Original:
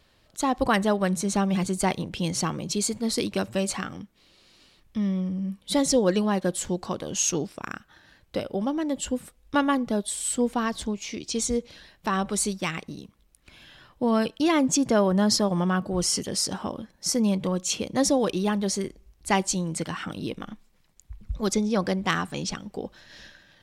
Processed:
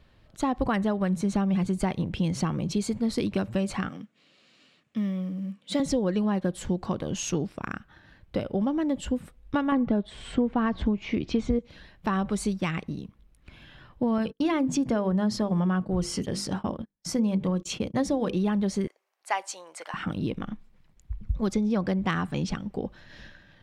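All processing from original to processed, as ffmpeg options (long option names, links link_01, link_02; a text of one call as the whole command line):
ffmpeg -i in.wav -filter_complex "[0:a]asettb=1/sr,asplit=3[link_01][link_02][link_03];[link_01]atrim=end=3.894[link_04];[link_02]atrim=start=3.89:end=5.8,asetpts=PTS-STARTPTS,afade=type=in:duration=0.004:curve=qsin,afade=type=out:start_time=1.906:duration=0.004:curve=qsin,highpass=frequency=170:width=0.5412,highpass=frequency=170:width=1.3066,equalizer=frequency=190:width_type=q:width=4:gain=-7,equalizer=frequency=360:width_type=q:width=4:gain=-8,equalizer=frequency=900:width_type=q:width=4:gain=-7,equalizer=frequency=2700:width_type=q:width=4:gain=3,equalizer=frequency=7200:width_type=q:width=4:gain=6,lowpass=frequency=9700:width=0.5412,lowpass=frequency=9700:width=1.3066,acrusher=bits=7:mode=log:mix=0:aa=0.000001[link_05];[link_03]atrim=start=5.796[link_06];[link_04][link_05]acrossfade=duration=0.004:curve1=hsin:curve2=qsin[link_07];[link_07][link_06]acrossfade=duration=0.004:curve1=qsin:curve2=hsin,asettb=1/sr,asplit=3[link_08][link_09][link_10];[link_08]atrim=end=9.724[link_11];[link_09]atrim=start=9.72:end=11.59,asetpts=PTS-STARTPTS,afade=type=in:duration=0.004:curve=qsin,afade=type=out:start_time=1.866:duration=0.004:curve=qsin,lowpass=2700,acontrast=83[link_12];[link_10]atrim=start=11.586[link_13];[link_11][link_12]acrossfade=duration=0.004:curve1=hsin:curve2=qsin[link_14];[link_14][link_13]acrossfade=duration=0.004:curve1=qsin:curve2=hsin,asettb=1/sr,asplit=3[link_15][link_16][link_17];[link_15]atrim=end=14.184[link_18];[link_16]atrim=start=14.18:end=18.37,asetpts=PTS-STARTPTS,afade=type=in:duration=0.004:curve=qsin,afade=type=out:start_time=4.186:duration=0.004:curve=qsin,bandreject=frequency=50:width_type=h:width=6,bandreject=frequency=100:width_type=h:width=6,bandreject=frequency=150:width_type=h:width=6,bandreject=frequency=200:width_type=h:width=6,bandreject=frequency=250:width_type=h:width=6,bandreject=frequency=300:width_type=h:width=6,bandreject=frequency=350:width_type=h:width=6,bandreject=frequency=400:width_type=h:width=6,bandreject=frequency=450:width_type=h:width=6,bandreject=frequency=500:width_type=h:width=6,agate=range=-35dB:threshold=-37dB:ratio=16:release=100:detection=peak[link_19];[link_17]atrim=start=18.366[link_20];[link_18][link_19]acrossfade=duration=0.004:curve1=hsin:curve2=qsin[link_21];[link_21][link_20]acrossfade=duration=0.004:curve1=qsin:curve2=hsin,asettb=1/sr,asplit=3[link_22][link_23][link_24];[link_22]atrim=end=18.874[link_25];[link_23]atrim=start=18.87:end=19.94,asetpts=PTS-STARTPTS,afade=type=in:duration=0.004:curve=qsin,afade=type=out:start_time=1.066:duration=0.004:curve=qsin,highpass=frequency=630:width=0.5412,highpass=frequency=630:width=1.3066,equalizer=frequency=3400:width=1.5:gain=-4[link_26];[link_24]atrim=start=19.936[link_27];[link_25][link_26]acrossfade=duration=0.004:curve1=hsin:curve2=qsin[link_28];[link_28][link_27]acrossfade=duration=0.004:curve1=qsin:curve2=hsin,bass=frequency=250:gain=7,treble=frequency=4000:gain=-11,acompressor=threshold=-22dB:ratio=5" out.wav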